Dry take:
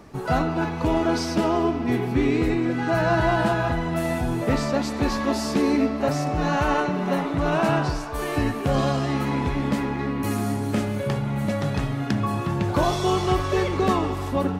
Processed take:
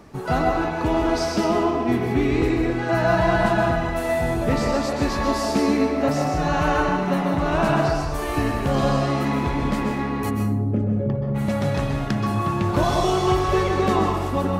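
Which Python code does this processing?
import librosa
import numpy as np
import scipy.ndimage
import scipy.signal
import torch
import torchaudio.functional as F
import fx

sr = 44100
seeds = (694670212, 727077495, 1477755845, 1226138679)

y = fx.envelope_sharpen(x, sr, power=2.0, at=(10.29, 11.34), fade=0.02)
y = fx.rev_plate(y, sr, seeds[0], rt60_s=0.7, hf_ratio=0.65, predelay_ms=115, drr_db=2.5)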